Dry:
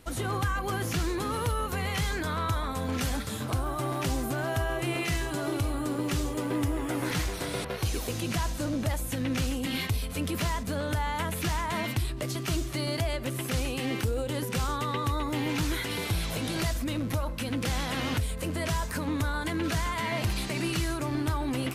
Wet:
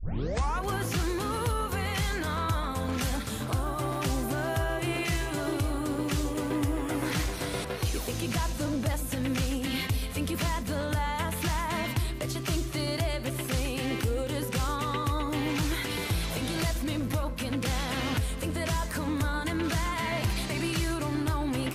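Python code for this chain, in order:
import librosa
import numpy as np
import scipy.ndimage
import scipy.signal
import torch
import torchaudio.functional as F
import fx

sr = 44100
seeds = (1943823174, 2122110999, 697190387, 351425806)

y = fx.tape_start_head(x, sr, length_s=0.63)
y = y + 10.0 ** (-14.0 / 20.0) * np.pad(y, (int(264 * sr / 1000.0), 0))[:len(y)]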